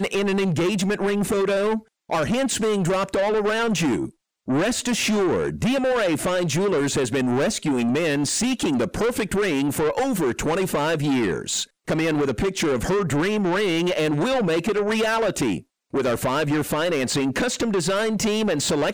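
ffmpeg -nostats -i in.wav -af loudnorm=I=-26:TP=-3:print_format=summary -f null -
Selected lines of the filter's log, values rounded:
Input Integrated:    -22.4 LUFS
Input True Peak:     -17.7 dBTP
Input LRA:             0.9 LU
Input Threshold:     -32.4 LUFS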